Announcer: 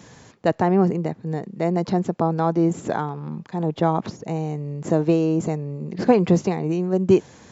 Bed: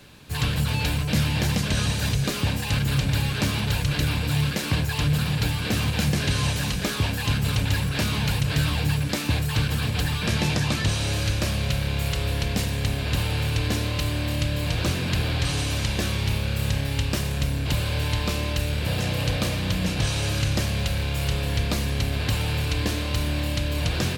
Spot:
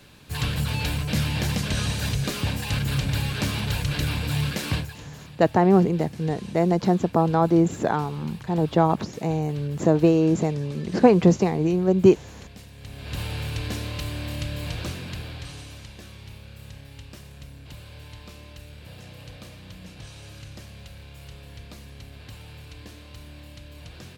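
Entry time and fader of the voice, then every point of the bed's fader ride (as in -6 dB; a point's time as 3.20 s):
4.95 s, +1.0 dB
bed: 4.76 s -2 dB
5.01 s -19.5 dB
12.74 s -19.5 dB
13.21 s -5.5 dB
14.68 s -5.5 dB
15.95 s -18 dB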